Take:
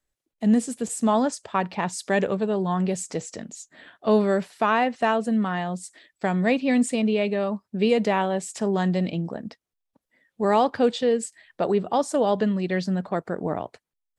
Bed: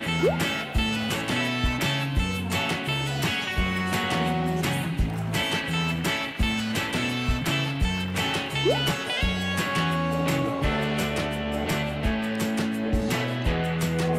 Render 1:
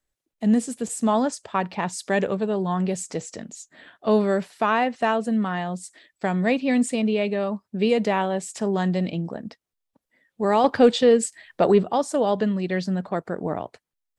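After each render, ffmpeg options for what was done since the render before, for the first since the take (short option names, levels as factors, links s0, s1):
-filter_complex "[0:a]asettb=1/sr,asplit=3[s0][s1][s2];[s0]atrim=end=10.644[s3];[s1]atrim=start=10.64:end=11.84,asetpts=PTS-STARTPTS,afade=t=in:d=0.004:c=qsin,afade=t=out:st=1.196:d=0.004:c=qsin,acontrast=44[s4];[s2]atrim=start=11.836[s5];[s3][s4]acrossfade=d=0.004:c1=hsin:c2=qsin[s6];[s6][s5]acrossfade=d=0.004:c1=qsin:c2=hsin"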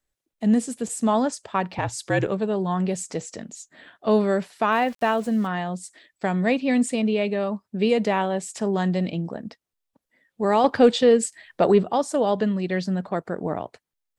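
-filter_complex "[0:a]asettb=1/sr,asplit=3[s0][s1][s2];[s0]atrim=end=1.784[s3];[s1]atrim=start=1.78:end=2.27,asetpts=PTS-STARTPTS,afade=t=in:d=0.004:c=qsin,afade=t=out:st=0.486:d=0.004:c=qsin,afreqshift=-64[s4];[s2]atrim=start=2.266[s5];[s3][s4]acrossfade=d=0.004:c1=hsin:c2=qsin[s6];[s6][s5]acrossfade=d=0.004:c1=qsin:c2=hsin,asettb=1/sr,asplit=3[s7][s8][s9];[s7]atrim=end=4.724[s10];[s8]atrim=start=4.72:end=5.47,asetpts=PTS-STARTPTS,afade=t=in:d=0.004:c=qsin,afade=t=out:st=0.746:d=0.004:c=qsin,aeval=exprs='val(0)*gte(abs(val(0)),0.01)':c=same[s11];[s9]atrim=start=5.466[s12];[s10][s11]acrossfade=d=0.004:c1=hsin:c2=qsin[s13];[s13][s12]acrossfade=d=0.004:c1=qsin:c2=hsin"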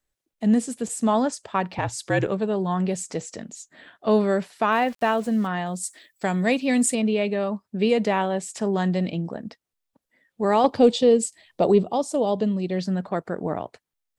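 -filter_complex "[0:a]asettb=1/sr,asplit=3[s0][s1][s2];[s0]atrim=end=5.664[s3];[s1]atrim=start=5.66:end=6.95,asetpts=PTS-STARTPTS,afade=t=in:d=0.004:c=qsin,afade=t=out:st=1.286:d=0.004:c=qsin,aemphasis=mode=production:type=50fm[s4];[s2]atrim=start=6.946[s5];[s3][s4]acrossfade=d=0.004:c1=hsin:c2=qsin[s6];[s6][s5]acrossfade=d=0.004:c1=qsin:c2=hsin,asettb=1/sr,asplit=3[s7][s8][s9];[s7]atrim=end=10.664[s10];[s8]atrim=start=10.66:end=12.79,asetpts=PTS-STARTPTS,afade=t=in:d=0.004:c=qsin,afade=t=out:st=2.126:d=0.004:c=qsin,equalizer=f=1600:t=o:w=0.86:g=-13.5[s11];[s9]atrim=start=12.786[s12];[s10][s11]acrossfade=d=0.004:c1=hsin:c2=qsin[s13];[s13][s12]acrossfade=d=0.004:c1=qsin:c2=hsin"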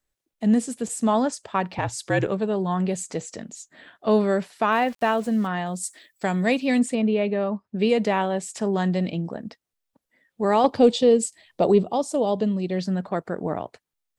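-filter_complex "[0:a]asettb=1/sr,asplit=3[s0][s1][s2];[s0]atrim=end=2.624[s3];[s1]atrim=start=2.62:end=3.28,asetpts=PTS-STARTPTS,afade=t=in:d=0.004:c=qsin,afade=t=out:st=0.656:d=0.004:c=qsin,bandreject=f=5400:w=12[s4];[s2]atrim=start=3.276[s5];[s3][s4]acrossfade=d=0.004:c1=hsin:c2=qsin[s6];[s6][s5]acrossfade=d=0.004:c1=qsin:c2=hsin,asettb=1/sr,asplit=3[s7][s8][s9];[s7]atrim=end=6.794[s10];[s8]atrim=start=6.79:end=7.76,asetpts=PTS-STARTPTS,afade=t=in:d=0.004:c=qsin,afade=t=out:st=0.966:d=0.004:c=qsin,aemphasis=mode=reproduction:type=75fm[s11];[s9]atrim=start=7.756[s12];[s10][s11]acrossfade=d=0.004:c1=hsin:c2=qsin[s13];[s13][s12]acrossfade=d=0.004:c1=qsin:c2=hsin"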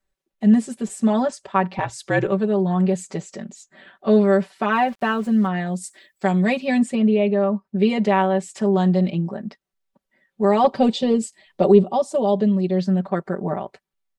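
-af "highshelf=f=4400:g=-9,aecho=1:1:5.2:0.96"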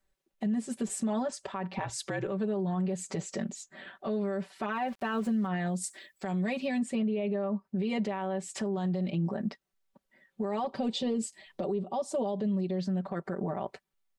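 -af "acompressor=threshold=0.0631:ratio=6,alimiter=limit=0.0668:level=0:latency=1:release=55"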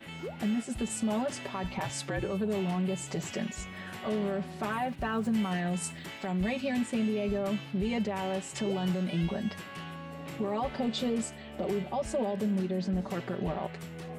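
-filter_complex "[1:a]volume=0.141[s0];[0:a][s0]amix=inputs=2:normalize=0"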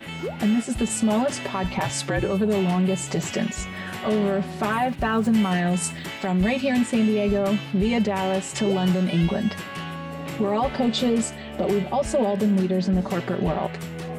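-af "volume=2.82"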